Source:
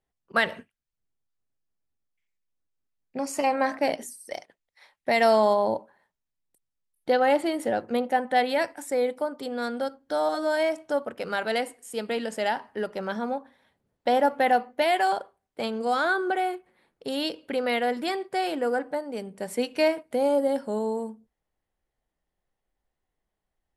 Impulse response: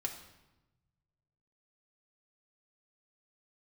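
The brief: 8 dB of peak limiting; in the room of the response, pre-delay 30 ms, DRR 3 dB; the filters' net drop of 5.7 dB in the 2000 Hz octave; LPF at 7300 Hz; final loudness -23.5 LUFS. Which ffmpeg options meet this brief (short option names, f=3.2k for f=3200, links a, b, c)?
-filter_complex "[0:a]lowpass=7.3k,equalizer=f=2k:t=o:g=-7.5,alimiter=limit=-19dB:level=0:latency=1,asplit=2[a][b];[1:a]atrim=start_sample=2205,adelay=30[c];[b][c]afir=irnorm=-1:irlink=0,volume=-3.5dB[d];[a][d]amix=inputs=2:normalize=0,volume=4.5dB"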